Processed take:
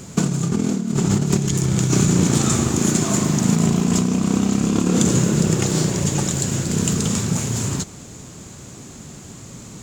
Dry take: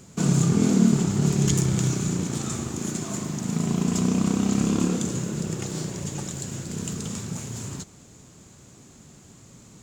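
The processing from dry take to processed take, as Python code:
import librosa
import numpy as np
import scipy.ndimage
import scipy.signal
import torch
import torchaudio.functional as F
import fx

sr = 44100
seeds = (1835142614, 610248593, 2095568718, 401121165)

y = fx.over_compress(x, sr, threshold_db=-26.0, ratio=-1.0)
y = F.gain(torch.from_numpy(y), 8.5).numpy()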